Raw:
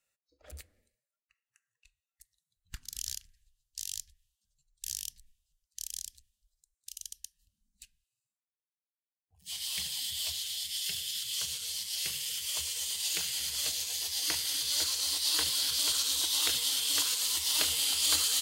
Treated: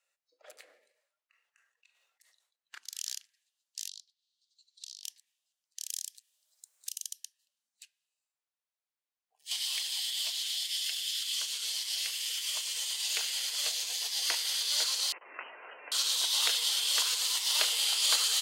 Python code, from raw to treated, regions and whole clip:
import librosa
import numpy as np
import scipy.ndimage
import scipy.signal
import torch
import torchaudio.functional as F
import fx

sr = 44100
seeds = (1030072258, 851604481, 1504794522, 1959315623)

y = fx.chain(x, sr, fx.high_shelf(hz=4300.0, db=-9.0),
    fx.sustainer(db_per_s=76.0), at=(0.56, 2.78))
y = fx.chain(y, sr, fx.ladder_bandpass(hz=4500.0, resonance_pct=65),
    fx.band_squash(depth_pct=100), at=(3.88, 5.04))
y = fx.chain(y, sr, fx.high_shelf(hz=8100.0, db=9.5),
    fx.band_squash(depth_pct=70), at=(5.89, 7.24))
y = fx.chain(y, sr, fx.low_shelf(hz=350.0, db=-10.5),
    fx.band_squash(depth_pct=100), at=(9.51, 13.09))
y = fx.chain(y, sr, fx.highpass(hz=120.0, slope=12),
    fx.level_steps(step_db=17),
    fx.freq_invert(carrier_hz=3000), at=(15.12, 15.92))
y = scipy.signal.sosfilt(scipy.signal.butter(4, 490.0, 'highpass', fs=sr, output='sos'), y)
y = fx.high_shelf(y, sr, hz=9300.0, db=-10.5)
y = y * librosa.db_to_amplitude(3.0)